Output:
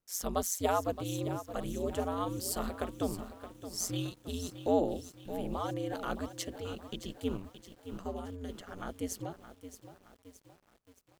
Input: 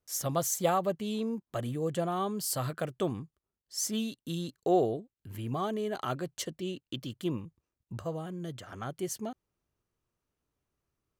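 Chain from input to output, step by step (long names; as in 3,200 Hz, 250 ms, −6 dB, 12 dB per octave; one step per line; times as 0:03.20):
ring modulation 91 Hz
feedback echo at a low word length 620 ms, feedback 55%, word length 9 bits, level −11.5 dB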